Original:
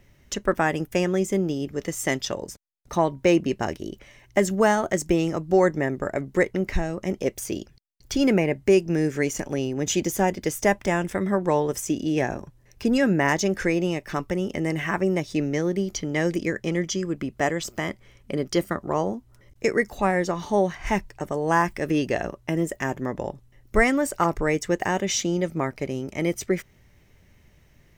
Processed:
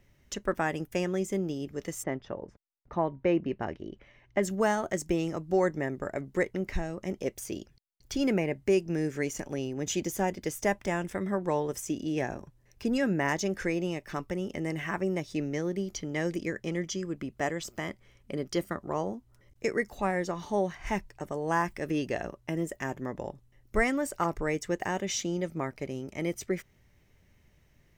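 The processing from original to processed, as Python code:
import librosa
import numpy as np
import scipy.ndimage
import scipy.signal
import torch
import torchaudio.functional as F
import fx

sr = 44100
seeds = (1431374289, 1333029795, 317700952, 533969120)

y = fx.lowpass(x, sr, hz=fx.line((2.02, 1300.0), (4.42, 3400.0)), slope=12, at=(2.02, 4.42), fade=0.02)
y = y * librosa.db_to_amplitude(-7.0)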